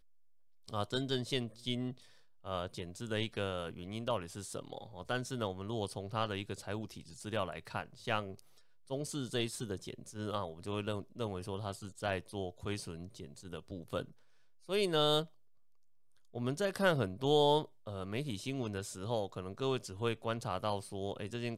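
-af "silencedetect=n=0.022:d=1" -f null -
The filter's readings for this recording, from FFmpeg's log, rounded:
silence_start: 15.22
silence_end: 16.36 | silence_duration: 1.14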